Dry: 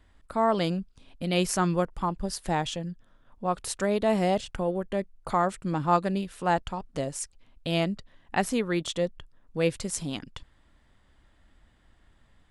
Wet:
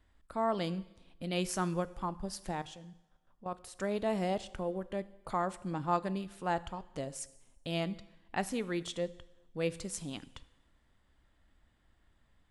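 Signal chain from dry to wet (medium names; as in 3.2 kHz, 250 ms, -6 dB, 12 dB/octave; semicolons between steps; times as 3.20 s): 2.51–3.78 s: level held to a coarse grid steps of 14 dB; two-slope reverb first 0.93 s, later 3 s, from -27 dB, DRR 15.5 dB; trim -8 dB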